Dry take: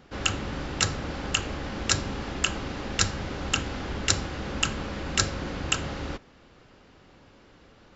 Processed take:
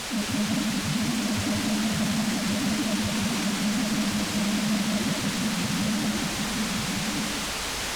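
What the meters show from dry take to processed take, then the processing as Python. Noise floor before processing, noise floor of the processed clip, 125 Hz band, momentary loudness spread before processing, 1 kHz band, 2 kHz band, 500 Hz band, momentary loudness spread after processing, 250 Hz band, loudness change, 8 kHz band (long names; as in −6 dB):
−56 dBFS, −30 dBFS, +2.5 dB, 7 LU, +2.0 dB, +2.0 dB, +1.5 dB, 2 LU, +11.0 dB, +3.0 dB, can't be measured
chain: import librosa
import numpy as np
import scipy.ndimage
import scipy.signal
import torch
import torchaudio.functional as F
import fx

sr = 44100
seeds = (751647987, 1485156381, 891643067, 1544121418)

y = scipy.signal.sosfilt(scipy.signal.butter(4, 87.0, 'highpass', fs=sr, output='sos'), x)
y = fx.dereverb_blind(y, sr, rt60_s=1.4)
y = fx.peak_eq(y, sr, hz=210.0, db=12.5, octaves=0.72)
y = fx.over_compress(y, sr, threshold_db=-30.0, ratio=-0.5)
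y = fx.add_hum(y, sr, base_hz=50, snr_db=22)
y = fx.spec_topn(y, sr, count=2)
y = fx.quant_dither(y, sr, seeds[0], bits=6, dither='triangular')
y = y + 10.0 ** (-4.5 / 20.0) * np.pad(y, (int(1143 * sr / 1000.0), 0))[:len(y)]
y = fx.fold_sine(y, sr, drive_db=9, ceiling_db=-21.5)
y = fx.air_absorb(y, sr, metres=71.0)
y = y + 10.0 ** (-3.5 / 20.0) * np.pad(y, (int(177 * sr / 1000.0), 0))[:len(y)]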